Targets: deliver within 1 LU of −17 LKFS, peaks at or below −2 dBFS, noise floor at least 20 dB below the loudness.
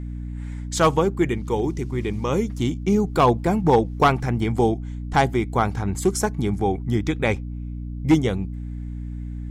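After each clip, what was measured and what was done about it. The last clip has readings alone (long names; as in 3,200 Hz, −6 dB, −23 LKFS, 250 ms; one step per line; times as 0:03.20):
mains hum 60 Hz; hum harmonics up to 300 Hz; level of the hum −29 dBFS; integrated loudness −22.0 LKFS; sample peak −6.0 dBFS; target loudness −17.0 LKFS
→ hum removal 60 Hz, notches 5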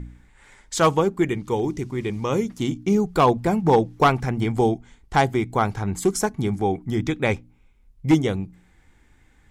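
mains hum none found; integrated loudness −22.5 LKFS; sample peak −6.0 dBFS; target loudness −17.0 LKFS
→ level +5.5 dB
brickwall limiter −2 dBFS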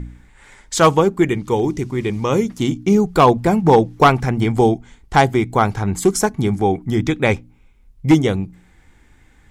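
integrated loudness −17.0 LKFS; sample peak −2.0 dBFS; background noise floor −52 dBFS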